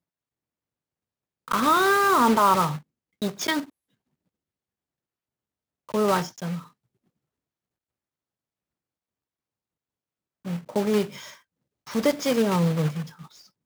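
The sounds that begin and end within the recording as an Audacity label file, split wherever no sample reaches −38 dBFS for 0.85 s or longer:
1.480000	3.650000	sound
5.890000	6.620000	sound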